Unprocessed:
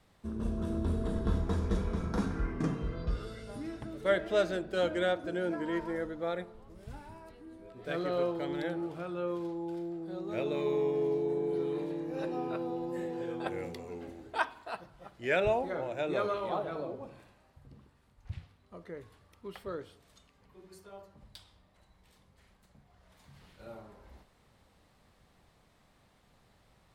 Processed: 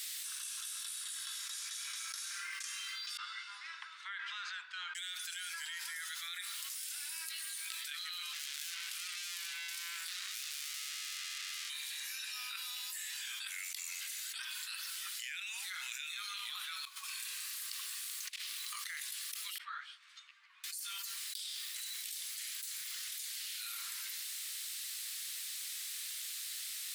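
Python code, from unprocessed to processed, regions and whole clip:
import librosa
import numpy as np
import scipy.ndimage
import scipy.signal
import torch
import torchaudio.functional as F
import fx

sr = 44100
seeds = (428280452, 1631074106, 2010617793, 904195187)

y = fx.chain(x, sr, fx.bandpass_q(hz=960.0, q=3.8),
    fx.air_absorb(metres=100.0), at=(3.17, 4.95))
y = fx.chain(y, sr, fx.highpass(hz=380.0, slope=12),
    fx.tube_stage(drive_db=49.0, bias=0.75), at=(8.33, 11.7))
y = fx.chain(y, sr, fx.over_compress(threshold_db=-51.0, ratio=-1.0),
    fx.peak_eq(hz=1100.0, db=10.5, octaves=0.21), at=(16.85, 18.87))
y = fx.chain(y, sr, fx.lowpass(hz=1000.0, slope=12),
    fx.ensemble(), at=(19.58, 20.64))
y = scipy.signal.sosfilt(scipy.signal.bessel(8, 2500.0, 'highpass', norm='mag', fs=sr, output='sos'), y)
y = np.diff(y, prepend=0.0)
y = fx.env_flatten(y, sr, amount_pct=100)
y = y * 10.0 ** (2.0 / 20.0)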